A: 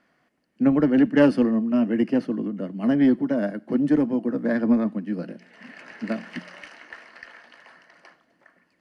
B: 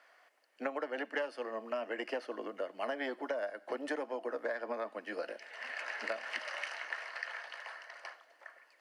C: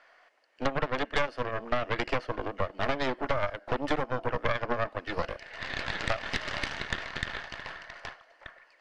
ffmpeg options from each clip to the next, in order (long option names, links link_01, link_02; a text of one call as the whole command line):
ffmpeg -i in.wav -af "highpass=frequency=540:width=0.5412,highpass=frequency=540:width=1.3066,acompressor=threshold=-37dB:ratio=16,volume=4dB" out.wav
ffmpeg -i in.wav -af "aeval=exprs='0.106*(cos(1*acos(clip(val(0)/0.106,-1,1)))-cos(1*PI/2))+0.0376*(cos(6*acos(clip(val(0)/0.106,-1,1)))-cos(6*PI/2))':channel_layout=same,lowpass=5700,volume=4.5dB" out.wav